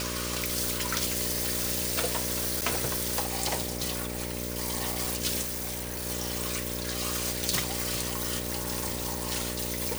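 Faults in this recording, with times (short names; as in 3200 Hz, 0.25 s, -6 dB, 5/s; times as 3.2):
buzz 60 Hz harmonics 10 -36 dBFS
2.61–2.62 gap 7.8 ms
5.41–6.07 clipped -30 dBFS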